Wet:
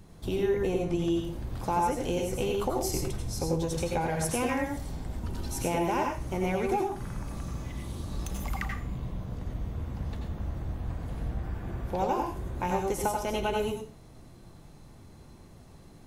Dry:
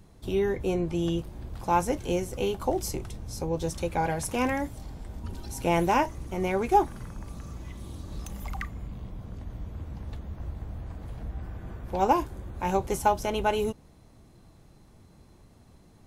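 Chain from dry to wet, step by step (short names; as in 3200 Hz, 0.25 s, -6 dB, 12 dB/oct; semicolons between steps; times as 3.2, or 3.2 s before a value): compressor, threshold -29 dBFS, peak gain reduction 13 dB; on a send: reverb RT60 0.35 s, pre-delay 80 ms, DRR 1.5 dB; on the sum: gain +2 dB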